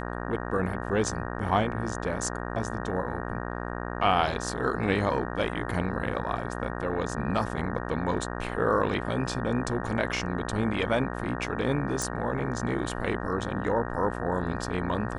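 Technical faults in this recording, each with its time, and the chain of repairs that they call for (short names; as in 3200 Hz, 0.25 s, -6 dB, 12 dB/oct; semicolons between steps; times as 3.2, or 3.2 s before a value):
buzz 60 Hz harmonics 31 -34 dBFS
12.02 pop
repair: de-click; de-hum 60 Hz, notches 31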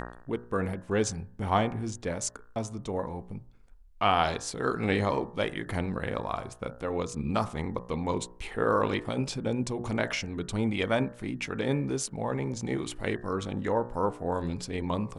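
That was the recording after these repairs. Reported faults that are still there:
none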